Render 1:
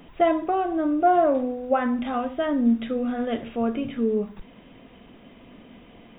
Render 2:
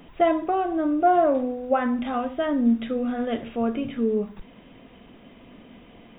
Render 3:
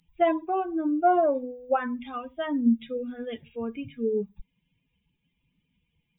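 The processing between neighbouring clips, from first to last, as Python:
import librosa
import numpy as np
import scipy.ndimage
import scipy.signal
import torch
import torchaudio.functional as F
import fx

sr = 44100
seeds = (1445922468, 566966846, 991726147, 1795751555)

y1 = x
y2 = fx.bin_expand(y1, sr, power=2.0)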